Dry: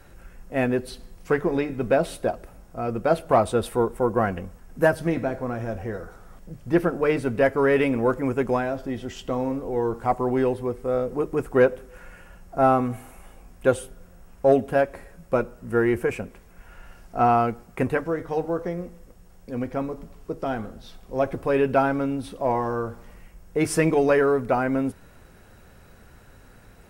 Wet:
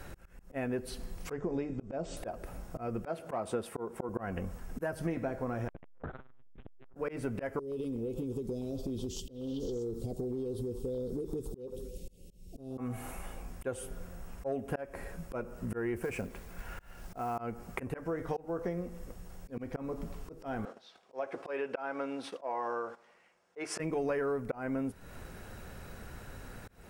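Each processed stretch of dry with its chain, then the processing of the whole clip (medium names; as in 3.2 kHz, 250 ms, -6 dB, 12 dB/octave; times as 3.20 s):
1.32–2.17 s: steep low-pass 8 kHz 96 dB/octave + peaking EQ 1.9 kHz -8 dB 2.2 oct + band-stop 4 kHz, Q 17
3.05–4.09 s: high-pass 140 Hz + treble shelf 10 kHz -7.5 dB
5.68–6.96 s: monotone LPC vocoder at 8 kHz 130 Hz + compression 10:1, threshold -31 dBFS + transformer saturation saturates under 740 Hz
7.59–12.78 s: Chebyshev band-stop 450–3700 Hz, order 3 + compression 12:1, threshold -32 dBFS + repeats whose band climbs or falls 125 ms, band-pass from 1.1 kHz, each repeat 0.7 oct, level 0 dB
15.96–17.38 s: compression 2.5:1, threshold -27 dBFS + companded quantiser 6-bit
20.65–23.80 s: gate -41 dBFS, range -12 dB + band-pass 500–5600 Hz
whole clip: dynamic bell 3.8 kHz, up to -6 dB, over -53 dBFS, Q 2.6; slow attack 316 ms; compression 4:1, threshold -37 dBFS; trim +3.5 dB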